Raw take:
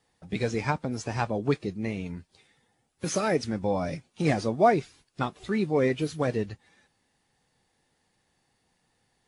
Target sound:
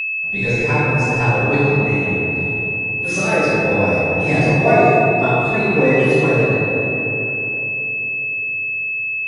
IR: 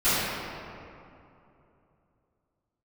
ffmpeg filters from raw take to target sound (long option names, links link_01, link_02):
-filter_complex "[1:a]atrim=start_sample=2205,asetrate=31752,aresample=44100[link_01];[0:a][link_01]afir=irnorm=-1:irlink=0,aeval=exprs='val(0)+0.316*sin(2*PI*2600*n/s)':channel_layout=same,equalizer=frequency=220:width=5.6:gain=-7,volume=-9.5dB"